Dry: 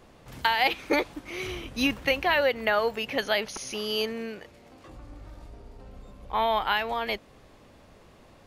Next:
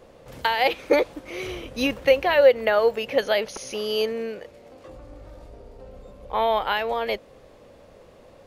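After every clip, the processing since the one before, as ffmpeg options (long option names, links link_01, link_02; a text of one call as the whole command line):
ffmpeg -i in.wav -af "equalizer=frequency=520:width=2.5:gain=11.5" out.wav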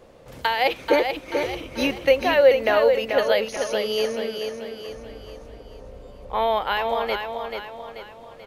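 ffmpeg -i in.wav -af "aecho=1:1:436|872|1308|1744|2180:0.501|0.226|0.101|0.0457|0.0206" out.wav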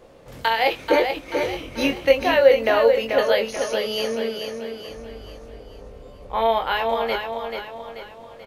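ffmpeg -i in.wav -filter_complex "[0:a]asplit=2[link_01][link_02];[link_02]adelay=22,volume=-5.5dB[link_03];[link_01][link_03]amix=inputs=2:normalize=0" out.wav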